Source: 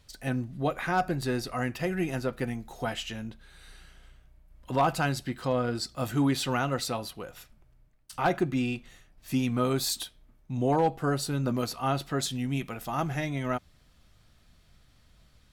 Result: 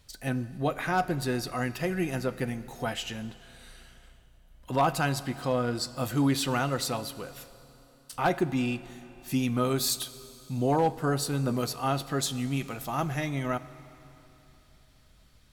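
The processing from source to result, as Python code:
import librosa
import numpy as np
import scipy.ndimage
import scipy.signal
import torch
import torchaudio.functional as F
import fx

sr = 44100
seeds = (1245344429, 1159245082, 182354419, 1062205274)

y = fx.high_shelf(x, sr, hz=7700.0, db=5.0)
y = fx.rev_schroeder(y, sr, rt60_s=3.3, comb_ms=29, drr_db=15.5)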